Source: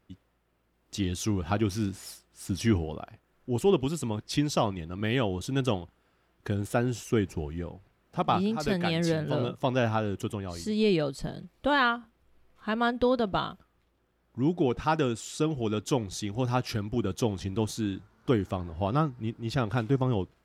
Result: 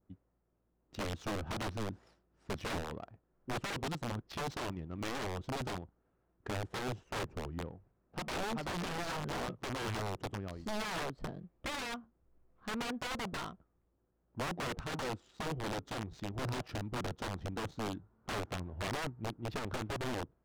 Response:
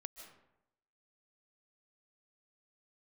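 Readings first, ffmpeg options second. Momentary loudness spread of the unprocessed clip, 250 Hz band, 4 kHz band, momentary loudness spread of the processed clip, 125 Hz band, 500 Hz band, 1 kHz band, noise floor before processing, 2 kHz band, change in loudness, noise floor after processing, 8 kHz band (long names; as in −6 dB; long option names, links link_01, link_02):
11 LU, −13.0 dB, −6.5 dB, 8 LU, −11.5 dB, −12.0 dB, −8.5 dB, −71 dBFS, −6.0 dB, −10.5 dB, −78 dBFS, −7.5 dB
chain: -af "aeval=exprs='(mod(17.8*val(0)+1,2)-1)/17.8':channel_layout=same,adynamicequalizer=threshold=0.00355:dfrequency=2400:dqfactor=1.8:tfrequency=2400:tqfactor=1.8:attack=5:release=100:ratio=0.375:range=2:mode=cutabove:tftype=bell,adynamicsmooth=sensitivity=5.5:basefreq=1100,volume=-5.5dB"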